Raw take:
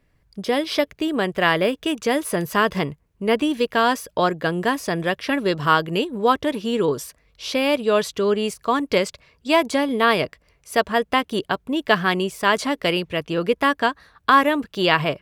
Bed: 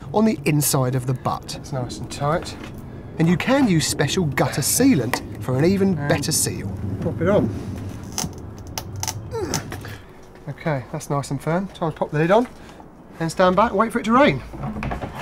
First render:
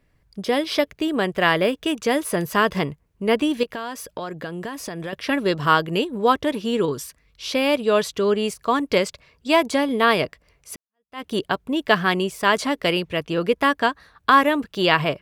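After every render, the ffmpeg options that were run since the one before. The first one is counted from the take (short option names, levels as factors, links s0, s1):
-filter_complex "[0:a]asettb=1/sr,asplit=3[s0][s1][s2];[s0]atrim=end=3.634[s3];[s1]atrim=start=3.63:end=5.13,asetpts=PTS-STARTPTS,afade=t=in:d=0.004:c=qsin,afade=t=out:st=1.496:d=0.004:c=qsin,acompressor=threshold=0.0447:ratio=6:attack=3.2:release=140:knee=1:detection=peak[s4];[s2]atrim=start=5.126[s5];[s3][s4]acrossfade=d=0.004:c1=hsin:c2=qsin[s6];[s6][s5]acrossfade=d=0.004:c1=qsin:c2=hsin,asettb=1/sr,asplit=3[s7][s8][s9];[s7]atrim=end=6.854[s10];[s8]atrim=start=6.85:end=7.51,asetpts=PTS-STARTPTS,afade=t=in:d=0.004:c=qsin,afade=t=out:st=0.656:d=0.004:c=qsin,equalizer=f=620:t=o:w=1.2:g=-7.5[s11];[s9]atrim=start=7.506[s12];[s10][s11]acrossfade=d=0.004:c1=hsin:c2=qsin[s13];[s13][s12]acrossfade=d=0.004:c1=qsin:c2=hsin,asplit=2[s14][s15];[s14]atrim=end=10.76,asetpts=PTS-STARTPTS,afade=t=out:st=10.756:d=0.004:c=hsin[s16];[s15]atrim=start=10.76,asetpts=PTS-STARTPTS,afade=t=in:d=0.49:c=exp[s17];[s16][s17]concat=n=2:v=0:a=1"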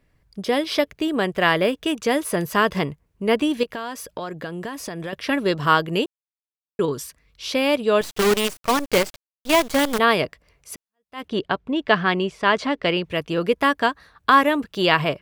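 -filter_complex "[0:a]asettb=1/sr,asplit=3[s0][s1][s2];[s0]atrim=end=8.014[s3];[s1]atrim=start=8.01:end=9.99,asetpts=PTS-STARTPTS,afade=t=in:d=0.004:c=qsin,afade=t=out:st=1.976:d=0.004:c=qsin,acrusher=bits=4:dc=4:mix=0:aa=0.000001[s4];[s2]atrim=start=9.986[s5];[s3][s4]acrossfade=d=0.004:c1=hsin:c2=qsin[s6];[s6][s5]acrossfade=d=0.004:c1=qsin:c2=hsin,asettb=1/sr,asplit=3[s7][s8][s9];[s7]atrim=end=11.284[s10];[s8]atrim=start=11.28:end=13.04,asetpts=PTS-STARTPTS,afade=t=in:d=0.004:c=qsin,afade=t=out:st=1.756:d=0.004:c=qsin,lowpass=4100[s11];[s9]atrim=start=13.036[s12];[s10][s11]acrossfade=d=0.004:c1=hsin:c2=qsin[s13];[s13][s12]acrossfade=d=0.004:c1=qsin:c2=hsin,asplit=3[s14][s15][s16];[s14]atrim=end=6.06,asetpts=PTS-STARTPTS,afade=t=out:st=6.056:d=0.004:c=hsin[s17];[s15]atrim=start=6.06:end=6.79,asetpts=PTS-STARTPTS,volume=0[s18];[s16]atrim=start=6.79,asetpts=PTS-STARTPTS,afade=t=in:d=0.004:c=hsin[s19];[s17][s18][s19]concat=n=3:v=0:a=1"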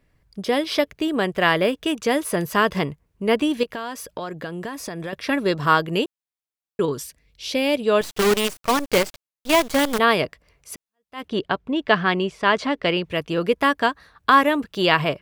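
-filter_complex "[0:a]asettb=1/sr,asplit=3[s0][s1][s2];[s0]atrim=end=4.674[s3];[s1]atrim=start=4.67:end=5.84,asetpts=PTS-STARTPTS,afade=t=in:d=0.004:c=qsin,afade=t=out:st=1.166:d=0.004:c=qsin,bandreject=f=3000:w=12[s4];[s2]atrim=start=5.836[s5];[s3][s4]acrossfade=d=0.004:c1=hsin:c2=qsin[s6];[s6][s5]acrossfade=d=0.004:c1=qsin:c2=hsin,asettb=1/sr,asplit=3[s7][s8][s9];[s7]atrim=end=7.034[s10];[s8]atrim=start=7.03:end=7.82,asetpts=PTS-STARTPTS,afade=t=in:d=0.004:c=qsin,afade=t=out:st=0.786:d=0.004:c=qsin,equalizer=f=1200:w=1.8:g=-10[s11];[s9]atrim=start=7.816[s12];[s10][s11]acrossfade=d=0.004:c1=hsin:c2=qsin[s13];[s13][s12]acrossfade=d=0.004:c1=qsin:c2=hsin"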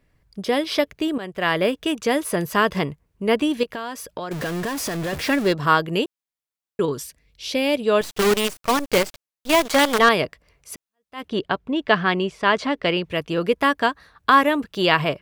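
-filter_complex "[0:a]asettb=1/sr,asplit=3[s0][s1][s2];[s0]atrim=end=4.314[s3];[s1]atrim=start=4.31:end=5.53,asetpts=PTS-STARTPTS,afade=t=in:d=0.004:c=qsin,afade=t=out:st=1.216:d=0.004:c=qsin,aeval=exprs='val(0)+0.5*0.0501*sgn(val(0))':c=same[s4];[s2]atrim=start=5.526[s5];[s3][s4]acrossfade=d=0.004:c1=hsin:c2=qsin[s6];[s6][s5]acrossfade=d=0.004:c1=qsin:c2=hsin,asettb=1/sr,asplit=3[s7][s8][s9];[s7]atrim=end=9.654[s10];[s8]atrim=start=9.65:end=10.09,asetpts=PTS-STARTPTS,afade=t=in:d=0.004:c=qsin,afade=t=out:st=0.436:d=0.004:c=qsin,asplit=2[s11][s12];[s12]highpass=f=720:p=1,volume=5.01,asoftclip=type=tanh:threshold=0.531[s13];[s11][s13]amix=inputs=2:normalize=0,lowpass=f=7300:p=1,volume=0.501[s14];[s9]atrim=start=10.086[s15];[s10][s14]acrossfade=d=0.004:c1=hsin:c2=qsin[s16];[s16][s15]acrossfade=d=0.004:c1=qsin:c2=hsin,asplit=2[s17][s18];[s17]atrim=end=1.18,asetpts=PTS-STARTPTS,afade=t=out:st=1.176:d=0.004:c=hsin:silence=0.211349[s19];[s18]atrim=start=1.18,asetpts=PTS-STARTPTS,afade=t=in:d=0.48:silence=0.211349[s20];[s19][s20]concat=n=2:v=0:a=1"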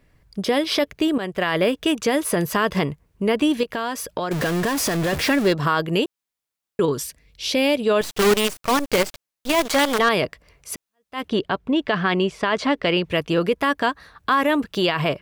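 -filter_complex "[0:a]asplit=2[s0][s1];[s1]acompressor=threshold=0.0562:ratio=6,volume=0.794[s2];[s0][s2]amix=inputs=2:normalize=0,alimiter=limit=0.316:level=0:latency=1:release=29"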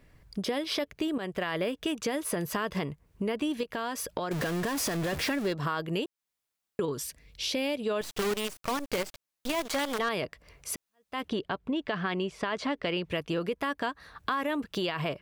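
-af "acompressor=threshold=0.0224:ratio=2.5"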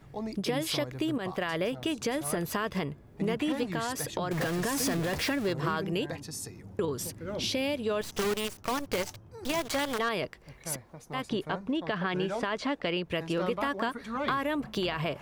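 -filter_complex "[1:a]volume=0.112[s0];[0:a][s0]amix=inputs=2:normalize=0"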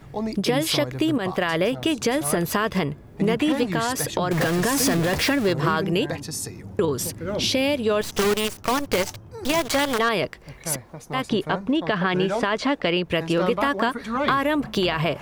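-af "volume=2.66"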